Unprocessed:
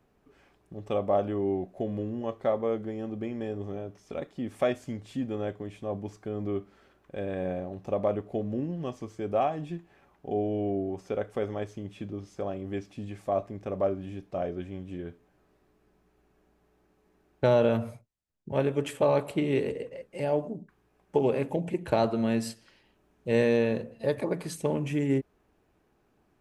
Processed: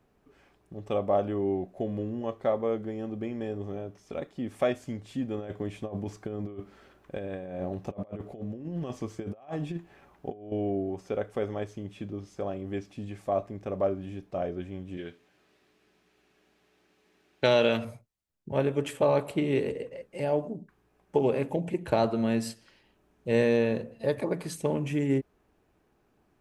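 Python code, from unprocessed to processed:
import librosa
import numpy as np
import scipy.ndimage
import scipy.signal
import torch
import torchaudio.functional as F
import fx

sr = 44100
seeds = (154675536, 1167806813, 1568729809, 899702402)

y = fx.over_compress(x, sr, threshold_db=-35.0, ratio=-0.5, at=(5.38, 10.52))
y = fx.weighting(y, sr, curve='D', at=(14.97, 17.85))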